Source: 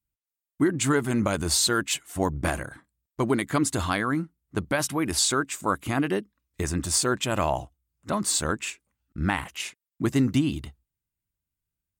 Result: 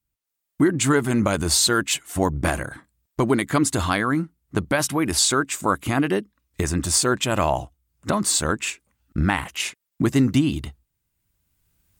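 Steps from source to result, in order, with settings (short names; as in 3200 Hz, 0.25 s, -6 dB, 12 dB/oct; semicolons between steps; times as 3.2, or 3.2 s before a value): recorder AGC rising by 12 dB/s; gain +4 dB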